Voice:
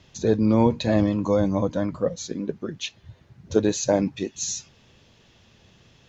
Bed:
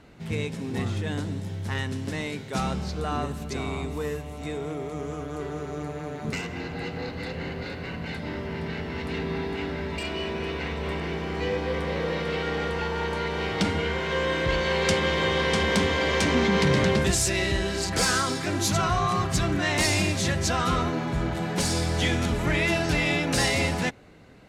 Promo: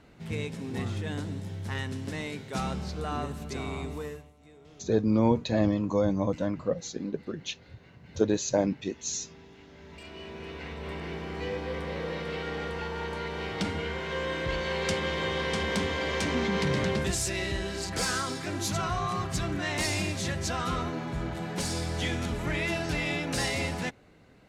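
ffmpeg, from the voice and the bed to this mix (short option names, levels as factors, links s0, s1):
-filter_complex "[0:a]adelay=4650,volume=0.596[s0];[1:a]volume=3.98,afade=t=out:st=3.91:d=0.42:silence=0.125893,afade=t=in:st=9.67:d=1.45:silence=0.158489[s1];[s0][s1]amix=inputs=2:normalize=0"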